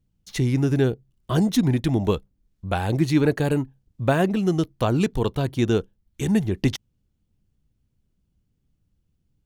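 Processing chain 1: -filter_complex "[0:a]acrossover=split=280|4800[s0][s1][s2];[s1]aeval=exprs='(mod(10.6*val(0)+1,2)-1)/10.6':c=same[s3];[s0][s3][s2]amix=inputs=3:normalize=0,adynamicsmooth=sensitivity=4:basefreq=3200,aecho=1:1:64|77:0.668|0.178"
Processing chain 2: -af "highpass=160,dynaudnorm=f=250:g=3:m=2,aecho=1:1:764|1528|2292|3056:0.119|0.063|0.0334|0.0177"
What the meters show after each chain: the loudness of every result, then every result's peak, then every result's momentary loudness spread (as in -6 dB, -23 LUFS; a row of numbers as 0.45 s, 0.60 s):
-23.0 LUFS, -19.5 LUFS; -8.0 dBFS, -2.0 dBFS; 10 LU, 17 LU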